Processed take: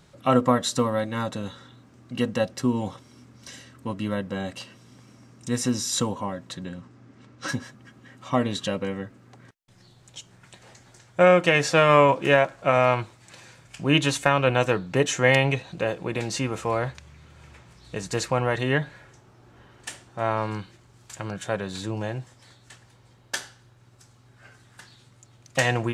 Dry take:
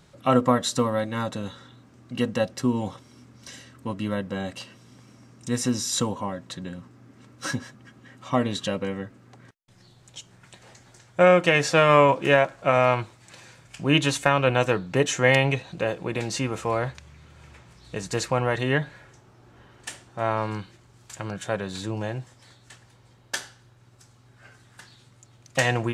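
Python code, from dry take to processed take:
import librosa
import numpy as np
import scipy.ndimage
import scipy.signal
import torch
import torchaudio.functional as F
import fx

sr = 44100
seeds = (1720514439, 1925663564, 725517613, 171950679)

y = fx.lowpass(x, sr, hz=fx.line((6.65, 9800.0), (7.47, 5200.0)), slope=12, at=(6.65, 7.47), fade=0.02)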